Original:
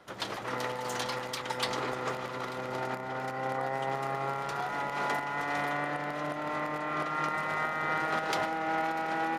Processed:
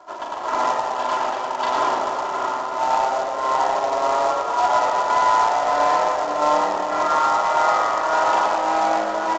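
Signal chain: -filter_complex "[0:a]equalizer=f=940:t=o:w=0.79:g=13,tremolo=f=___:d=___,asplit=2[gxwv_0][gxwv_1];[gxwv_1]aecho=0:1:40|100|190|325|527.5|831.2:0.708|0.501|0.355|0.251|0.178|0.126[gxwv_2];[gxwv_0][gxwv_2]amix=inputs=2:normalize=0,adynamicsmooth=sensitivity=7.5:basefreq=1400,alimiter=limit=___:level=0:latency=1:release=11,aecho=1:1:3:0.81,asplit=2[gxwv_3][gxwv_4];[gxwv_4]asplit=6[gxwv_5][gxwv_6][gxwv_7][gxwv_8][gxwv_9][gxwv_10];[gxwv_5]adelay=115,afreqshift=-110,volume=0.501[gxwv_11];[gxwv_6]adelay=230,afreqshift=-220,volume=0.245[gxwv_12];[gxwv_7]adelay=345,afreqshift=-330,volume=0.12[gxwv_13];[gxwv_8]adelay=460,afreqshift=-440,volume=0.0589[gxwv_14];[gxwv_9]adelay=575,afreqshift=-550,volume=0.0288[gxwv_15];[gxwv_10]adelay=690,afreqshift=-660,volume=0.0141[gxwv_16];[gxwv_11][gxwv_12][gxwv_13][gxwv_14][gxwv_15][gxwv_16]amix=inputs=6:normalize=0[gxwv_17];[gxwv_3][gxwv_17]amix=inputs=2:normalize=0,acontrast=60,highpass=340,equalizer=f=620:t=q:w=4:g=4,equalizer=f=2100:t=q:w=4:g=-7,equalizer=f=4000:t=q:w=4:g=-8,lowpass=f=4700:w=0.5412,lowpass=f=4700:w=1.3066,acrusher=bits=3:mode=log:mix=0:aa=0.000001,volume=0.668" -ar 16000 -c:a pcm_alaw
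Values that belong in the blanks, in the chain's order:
1.7, 0.61, 0.178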